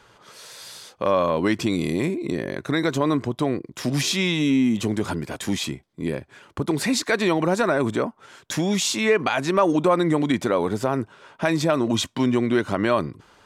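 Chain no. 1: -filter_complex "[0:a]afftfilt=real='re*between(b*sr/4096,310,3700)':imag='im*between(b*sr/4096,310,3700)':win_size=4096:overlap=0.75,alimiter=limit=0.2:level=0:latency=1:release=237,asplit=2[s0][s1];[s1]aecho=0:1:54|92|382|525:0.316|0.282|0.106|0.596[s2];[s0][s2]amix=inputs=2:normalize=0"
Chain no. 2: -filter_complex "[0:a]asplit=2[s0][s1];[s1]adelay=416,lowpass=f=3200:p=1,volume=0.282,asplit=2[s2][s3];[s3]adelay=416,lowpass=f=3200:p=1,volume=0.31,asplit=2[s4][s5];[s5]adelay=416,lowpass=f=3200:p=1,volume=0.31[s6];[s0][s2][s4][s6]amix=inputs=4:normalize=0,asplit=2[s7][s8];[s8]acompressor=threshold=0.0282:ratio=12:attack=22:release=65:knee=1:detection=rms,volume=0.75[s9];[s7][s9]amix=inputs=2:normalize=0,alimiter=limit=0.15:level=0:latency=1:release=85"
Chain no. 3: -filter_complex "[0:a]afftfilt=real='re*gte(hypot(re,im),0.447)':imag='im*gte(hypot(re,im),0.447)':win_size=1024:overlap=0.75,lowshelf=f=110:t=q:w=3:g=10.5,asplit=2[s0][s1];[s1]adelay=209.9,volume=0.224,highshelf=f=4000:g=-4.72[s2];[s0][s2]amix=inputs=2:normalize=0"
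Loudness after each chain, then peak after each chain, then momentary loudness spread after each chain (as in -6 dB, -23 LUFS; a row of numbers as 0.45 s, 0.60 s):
-25.5 LUFS, -26.5 LUFS, -26.5 LUFS; -10.0 dBFS, -16.5 dBFS, -9.0 dBFS; 8 LU, 6 LU, 14 LU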